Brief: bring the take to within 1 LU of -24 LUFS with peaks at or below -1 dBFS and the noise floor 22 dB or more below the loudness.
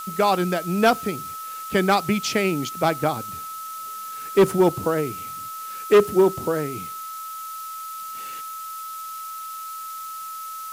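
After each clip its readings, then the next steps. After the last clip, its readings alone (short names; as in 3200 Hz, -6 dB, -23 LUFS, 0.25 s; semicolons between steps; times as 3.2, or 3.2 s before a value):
steady tone 1300 Hz; tone level -32 dBFS; noise floor -34 dBFS; noise floor target -46 dBFS; loudness -24.0 LUFS; peak -8.0 dBFS; loudness target -24.0 LUFS
-> notch 1300 Hz, Q 30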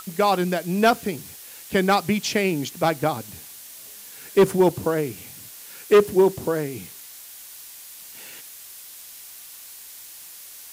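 steady tone none; noise floor -42 dBFS; noise floor target -44 dBFS
-> noise print and reduce 6 dB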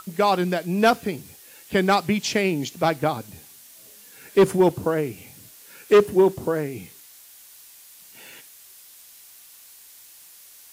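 noise floor -48 dBFS; loudness -22.0 LUFS; peak -8.0 dBFS; loudness target -24.0 LUFS
-> gain -2 dB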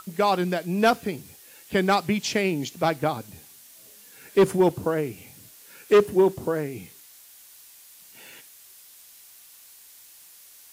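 loudness -24.0 LUFS; peak -10.0 dBFS; noise floor -50 dBFS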